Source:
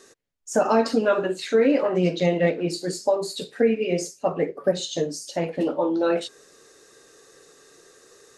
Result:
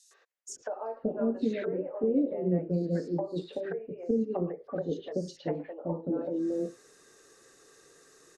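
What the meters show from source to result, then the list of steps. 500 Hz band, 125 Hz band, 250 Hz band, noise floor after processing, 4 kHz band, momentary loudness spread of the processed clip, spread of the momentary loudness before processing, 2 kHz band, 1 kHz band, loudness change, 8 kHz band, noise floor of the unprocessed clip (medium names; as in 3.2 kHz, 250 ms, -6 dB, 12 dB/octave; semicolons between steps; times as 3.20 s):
-10.0 dB, -4.5 dB, -5.5 dB, -63 dBFS, -19.0 dB, 9 LU, 8 LU, -17.0 dB, -15.0 dB, -9.0 dB, under -10 dB, -55 dBFS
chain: low-pass that closes with the level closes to 470 Hz, closed at -20 dBFS; three bands offset in time highs, mids, lows 110/490 ms, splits 560/3700 Hz; trim -4.5 dB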